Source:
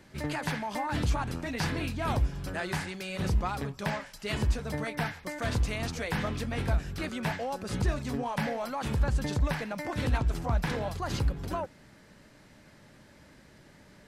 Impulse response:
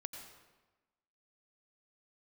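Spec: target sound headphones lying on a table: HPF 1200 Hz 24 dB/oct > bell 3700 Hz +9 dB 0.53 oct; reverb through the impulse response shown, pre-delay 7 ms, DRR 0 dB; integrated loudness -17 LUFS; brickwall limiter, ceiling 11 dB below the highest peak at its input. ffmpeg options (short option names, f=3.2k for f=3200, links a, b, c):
-filter_complex "[0:a]alimiter=level_in=3dB:limit=-24dB:level=0:latency=1,volume=-3dB,asplit=2[a][b];[1:a]atrim=start_sample=2205,adelay=7[c];[b][c]afir=irnorm=-1:irlink=0,volume=2.5dB[d];[a][d]amix=inputs=2:normalize=0,highpass=f=1.2k:w=0.5412,highpass=f=1.2k:w=1.3066,equalizer=f=3.7k:t=o:w=0.53:g=9,volume=20.5dB"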